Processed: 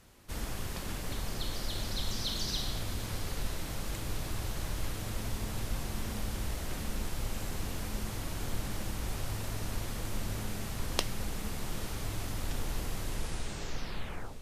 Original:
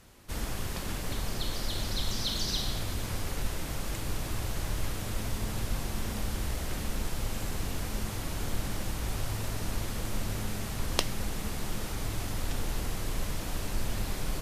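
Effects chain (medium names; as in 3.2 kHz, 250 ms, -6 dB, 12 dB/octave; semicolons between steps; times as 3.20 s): tape stop on the ending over 1.40 s; echo that smears into a reverb 937 ms, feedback 67%, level -16 dB; trim -3 dB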